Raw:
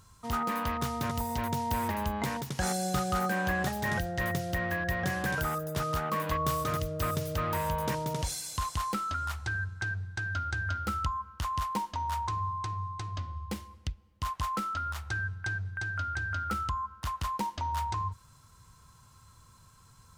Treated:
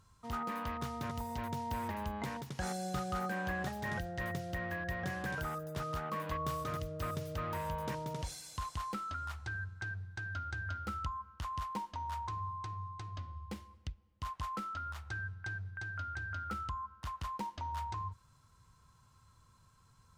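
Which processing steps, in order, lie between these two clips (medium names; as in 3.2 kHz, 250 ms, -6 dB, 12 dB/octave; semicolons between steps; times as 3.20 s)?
treble shelf 6.4 kHz -7.5 dB; trim -7 dB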